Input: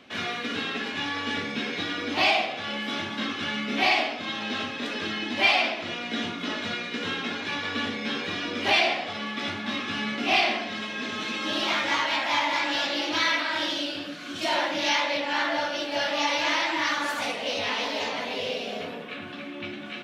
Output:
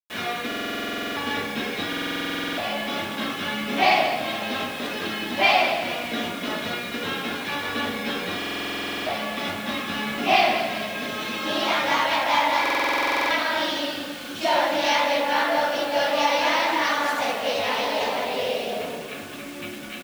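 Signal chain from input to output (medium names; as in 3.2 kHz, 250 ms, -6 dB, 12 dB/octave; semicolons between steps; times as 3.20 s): dynamic bell 700 Hz, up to +7 dB, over -39 dBFS, Q 0.82; bit crusher 7-bit; on a send: frequency-shifting echo 207 ms, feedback 55%, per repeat -30 Hz, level -10.5 dB; on the sum: buffer glitch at 0.47/1.88/8.37/12.61 s, samples 2048, times 14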